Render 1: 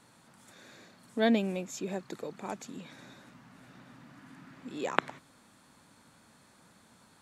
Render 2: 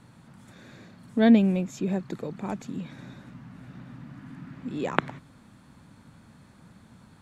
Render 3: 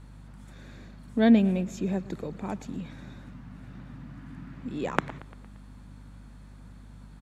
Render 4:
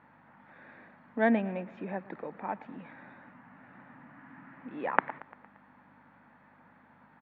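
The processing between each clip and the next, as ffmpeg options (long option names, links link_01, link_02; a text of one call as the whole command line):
ffmpeg -i in.wav -af "bass=frequency=250:gain=13,treble=frequency=4000:gain=-6,volume=2.5dB" out.wav
ffmpeg -i in.wav -af "aecho=1:1:115|230|345|460|575:0.0944|0.0566|0.034|0.0204|0.0122,asoftclip=type=hard:threshold=-3dB,aeval=exprs='val(0)+0.00562*(sin(2*PI*50*n/s)+sin(2*PI*2*50*n/s)/2+sin(2*PI*3*50*n/s)/3+sin(2*PI*4*50*n/s)/4+sin(2*PI*5*50*n/s)/5)':channel_layout=same,volume=-1.5dB" out.wav
ffmpeg -i in.wav -af "highpass=360,equalizer=frequency=390:width_type=q:width=4:gain=-7,equalizer=frequency=870:width_type=q:width=4:gain=6,equalizer=frequency=1800:width_type=q:width=4:gain=5,lowpass=frequency=2300:width=0.5412,lowpass=frequency=2300:width=1.3066" out.wav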